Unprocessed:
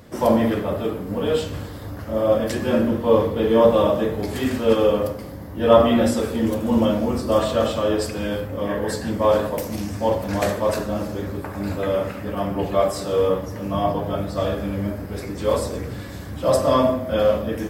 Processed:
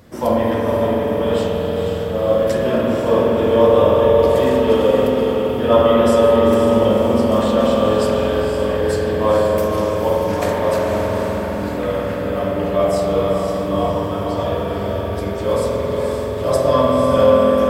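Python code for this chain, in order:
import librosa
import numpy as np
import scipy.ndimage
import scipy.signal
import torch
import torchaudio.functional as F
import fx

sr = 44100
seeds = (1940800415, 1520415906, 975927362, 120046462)

y = fx.echo_diffused(x, sr, ms=505, feedback_pct=44, wet_db=-5)
y = fx.rev_spring(y, sr, rt60_s=3.8, pass_ms=(47,), chirp_ms=30, drr_db=-1.5)
y = F.gain(torch.from_numpy(y), -1.0).numpy()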